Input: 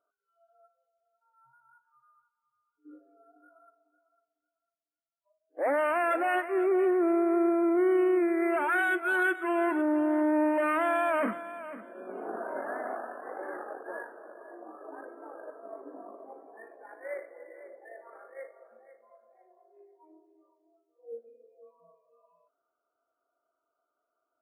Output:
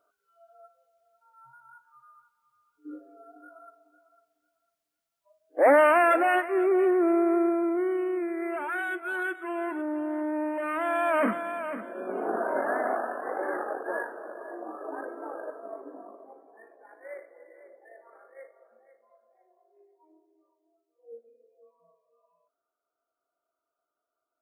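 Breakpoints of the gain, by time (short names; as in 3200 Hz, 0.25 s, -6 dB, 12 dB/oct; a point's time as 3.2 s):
5.71 s +9.5 dB
6.53 s +2.5 dB
7.28 s +2.5 dB
8.01 s -4.5 dB
10.62 s -4.5 dB
11.47 s +7.5 dB
15.34 s +7.5 dB
16.43 s -4 dB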